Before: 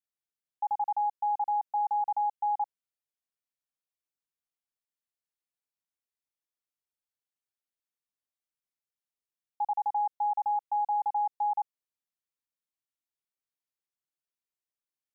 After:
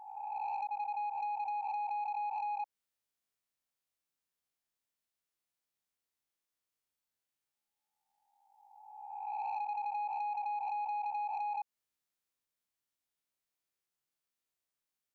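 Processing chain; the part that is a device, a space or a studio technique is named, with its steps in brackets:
peak hold with a rise ahead of every peak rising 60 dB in 1.57 s
0:00.67–0:01.47: downward expander −26 dBFS
drum-bus smash (transient designer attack +7 dB, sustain +1 dB; downward compressor 16 to 1, threshold −31 dBFS, peak gain reduction 9 dB; soft clipping −32 dBFS, distortion −17 dB)

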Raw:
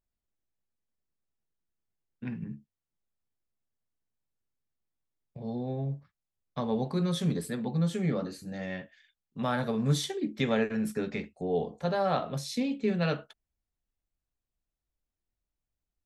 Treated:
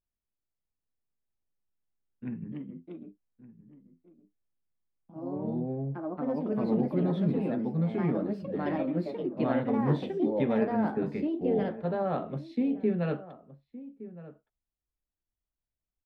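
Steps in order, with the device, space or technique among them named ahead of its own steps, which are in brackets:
0:05.60–0:06.99: low-pass filter 2,700 Hz 24 dB per octave
dynamic equaliser 310 Hz, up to +8 dB, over −43 dBFS, Q 0.9
delay with pitch and tempo change per echo 652 ms, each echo +3 semitones, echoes 2
shout across a valley (high-frequency loss of the air 450 metres; slap from a distant wall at 200 metres, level −16 dB)
level −4 dB

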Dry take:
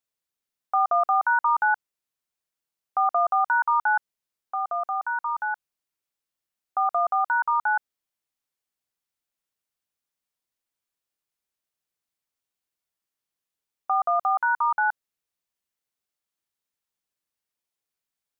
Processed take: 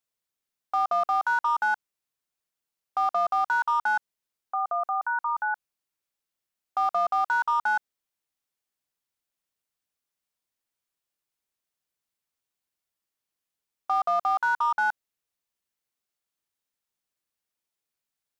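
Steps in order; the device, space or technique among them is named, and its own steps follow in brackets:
limiter into clipper (brickwall limiter −17 dBFS, peak gain reduction 3 dB; hard clipping −18.5 dBFS, distortion −26 dB)

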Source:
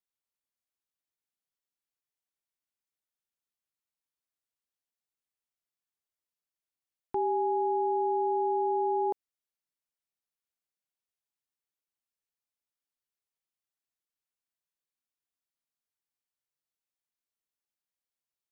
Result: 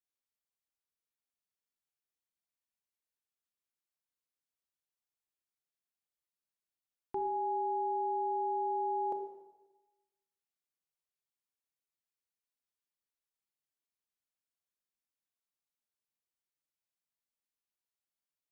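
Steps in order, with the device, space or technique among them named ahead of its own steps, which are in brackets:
bathroom (convolution reverb RT60 1.1 s, pre-delay 24 ms, DRR 5.5 dB)
level −5.5 dB

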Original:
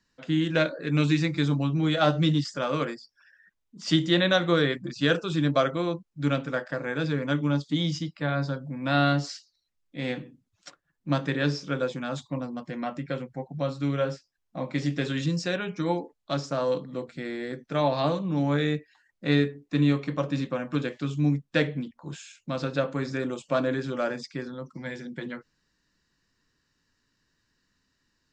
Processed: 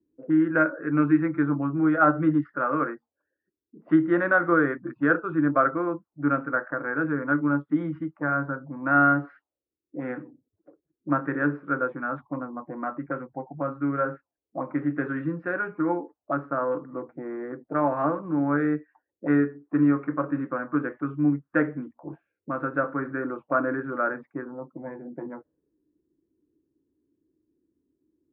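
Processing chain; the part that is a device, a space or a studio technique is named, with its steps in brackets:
envelope filter bass rig (envelope-controlled low-pass 360–1,400 Hz up, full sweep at −28.5 dBFS; loudspeaker in its box 69–2,200 Hz, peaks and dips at 120 Hz −5 dB, 190 Hz −7 dB, 310 Hz +9 dB)
level −3 dB

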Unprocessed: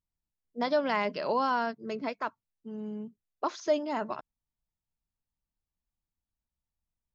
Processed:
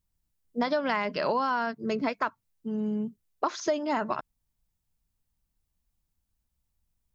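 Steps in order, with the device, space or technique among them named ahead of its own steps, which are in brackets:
dynamic equaliser 1,500 Hz, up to +6 dB, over −42 dBFS, Q 0.8
ASMR close-microphone chain (low-shelf EQ 230 Hz +7.5 dB; downward compressor, threshold −29 dBFS, peak gain reduction 10.5 dB; high-shelf EQ 6,200 Hz +6.5 dB)
level +5 dB

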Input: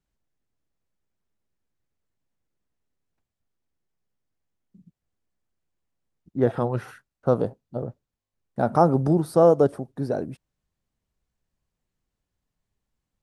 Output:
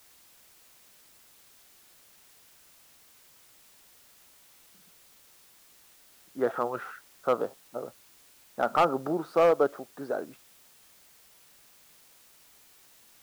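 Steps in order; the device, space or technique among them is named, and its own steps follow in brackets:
drive-through speaker (band-pass filter 380–3,900 Hz; parametric band 1,300 Hz +10 dB 0.52 octaves; hard clipping −12 dBFS, distortion −14 dB; white noise bed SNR 24 dB)
level −3.5 dB

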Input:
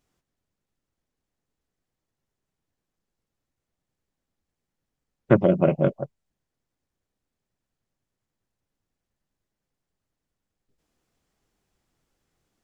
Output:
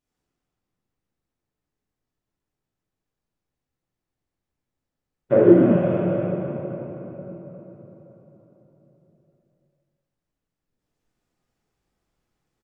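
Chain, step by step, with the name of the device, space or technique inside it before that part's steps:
cave (single-tap delay 259 ms −8 dB; convolution reverb RT60 4.3 s, pre-delay 18 ms, DRR −10 dB)
0:05.31–0:05.75: parametric band 600 Hz → 200 Hz +15 dB 0.67 octaves
level −12.5 dB

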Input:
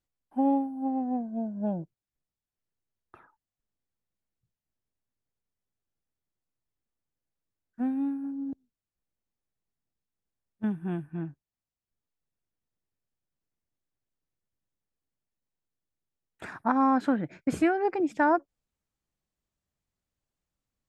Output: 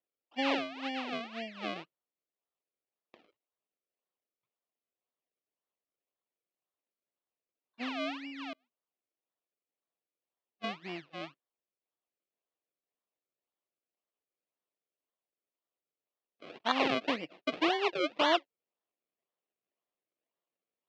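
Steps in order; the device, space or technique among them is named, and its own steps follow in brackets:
circuit-bent sampling toy (sample-and-hold swept by an LFO 33×, swing 100% 1.9 Hz; loudspeaker in its box 470–4,000 Hz, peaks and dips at 860 Hz −5 dB, 1,500 Hz −8 dB, 2,700 Hz +4 dB)

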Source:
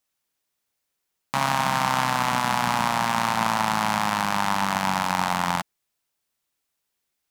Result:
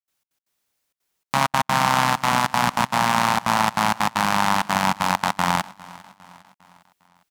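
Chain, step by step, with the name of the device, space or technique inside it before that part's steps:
trance gate with a delay (gate pattern ".xx.x.xxxxxx.xxx" 195 BPM −60 dB; repeating echo 404 ms, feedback 51%, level −21 dB)
level +4 dB

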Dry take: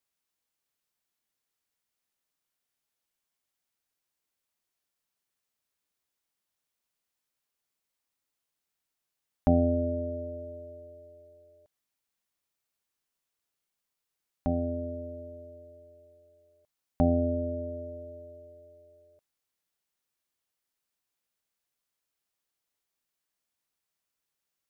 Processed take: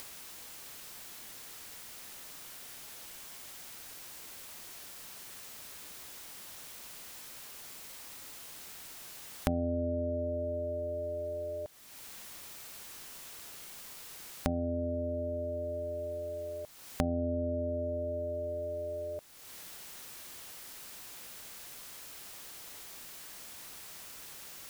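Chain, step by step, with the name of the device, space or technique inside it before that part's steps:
upward and downward compression (upward compression, threshold −47 dBFS; downward compressor 5 to 1, threshold −50 dBFS, peak gain reduction 27 dB)
level +17 dB

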